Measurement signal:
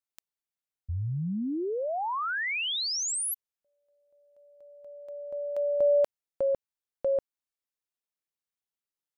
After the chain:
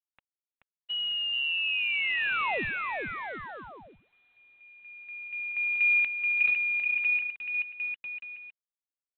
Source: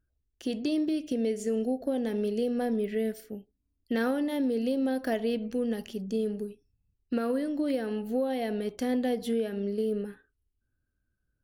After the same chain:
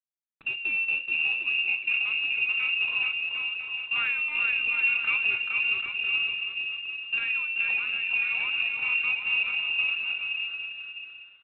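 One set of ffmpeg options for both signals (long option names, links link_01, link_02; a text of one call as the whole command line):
ffmpeg -i in.wav -filter_complex "[0:a]highpass=56,asplit=2[link_01][link_02];[link_02]aecho=0:1:430|752.5|994.4|1176|1312:0.631|0.398|0.251|0.158|0.1[link_03];[link_01][link_03]amix=inputs=2:normalize=0,lowpass=frequency=2600:width_type=q:width=0.5098,lowpass=frequency=2600:width_type=q:width=0.6013,lowpass=frequency=2600:width_type=q:width=0.9,lowpass=frequency=2600:width_type=q:width=2.563,afreqshift=-3000" -ar 8000 -c:a adpcm_g726 -b:a 24k out.wav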